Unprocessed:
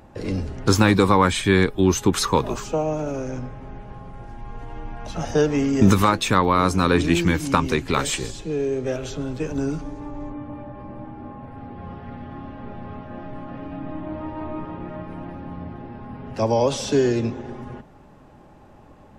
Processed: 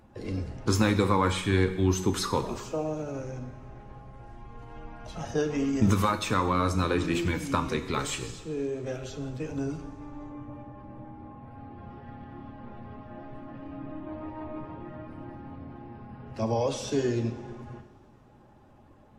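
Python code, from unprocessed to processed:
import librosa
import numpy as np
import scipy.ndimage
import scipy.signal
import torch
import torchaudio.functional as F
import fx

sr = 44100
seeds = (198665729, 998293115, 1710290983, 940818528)

y = fx.spec_quant(x, sr, step_db=15)
y = fx.rev_double_slope(y, sr, seeds[0], early_s=0.78, late_s=3.0, knee_db=-18, drr_db=7.5)
y = y * librosa.db_to_amplitude(-8.0)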